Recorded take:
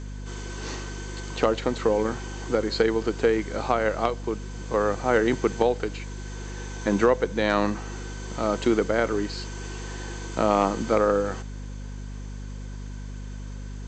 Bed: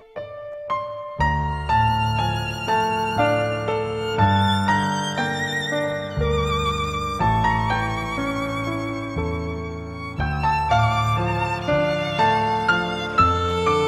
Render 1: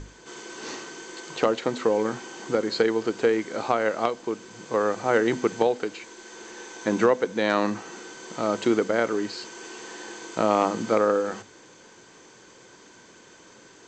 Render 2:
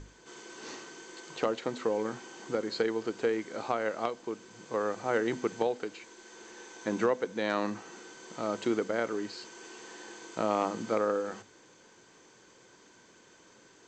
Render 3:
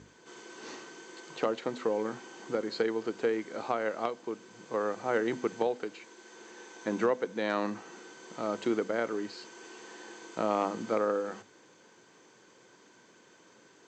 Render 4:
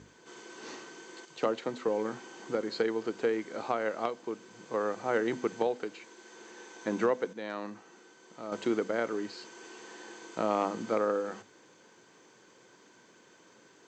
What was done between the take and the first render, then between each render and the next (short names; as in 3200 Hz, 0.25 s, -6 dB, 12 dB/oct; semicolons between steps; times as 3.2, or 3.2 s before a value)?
notches 50/100/150/200/250 Hz
gain -7.5 dB
HPF 120 Hz; high shelf 4500 Hz -4.5 dB
1.25–1.88 three-band expander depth 40%; 7.33–8.52 gain -7.5 dB